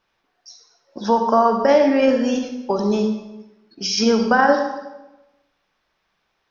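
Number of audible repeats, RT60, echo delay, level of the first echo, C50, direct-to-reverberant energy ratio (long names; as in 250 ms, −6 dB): no echo audible, 1.0 s, no echo audible, no echo audible, 5.5 dB, 4.5 dB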